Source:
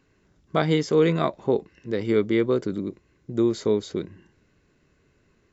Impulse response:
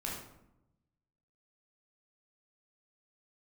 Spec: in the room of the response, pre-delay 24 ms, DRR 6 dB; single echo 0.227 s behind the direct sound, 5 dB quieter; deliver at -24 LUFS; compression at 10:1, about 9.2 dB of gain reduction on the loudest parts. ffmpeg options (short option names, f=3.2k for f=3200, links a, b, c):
-filter_complex "[0:a]acompressor=threshold=-25dB:ratio=10,aecho=1:1:227:0.562,asplit=2[a][b];[1:a]atrim=start_sample=2205,adelay=24[c];[b][c]afir=irnorm=-1:irlink=0,volume=-8dB[d];[a][d]amix=inputs=2:normalize=0,volume=6dB"